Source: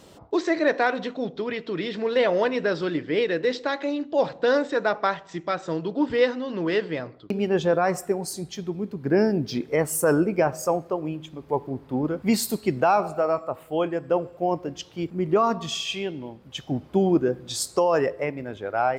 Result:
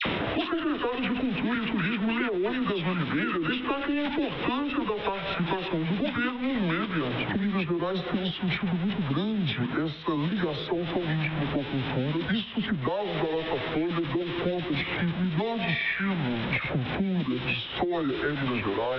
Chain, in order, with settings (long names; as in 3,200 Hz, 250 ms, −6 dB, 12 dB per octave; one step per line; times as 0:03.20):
converter with a step at zero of −30 dBFS
high-shelf EQ 2,300 Hz +8.5 dB
downward compressor, threshold −25 dBFS, peak gain reduction 11.5 dB
Butterworth low-pass 5,400 Hz 96 dB per octave
all-pass dispersion lows, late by 57 ms, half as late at 1,200 Hz
formants moved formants −6 semitones
multiband upward and downward compressor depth 100%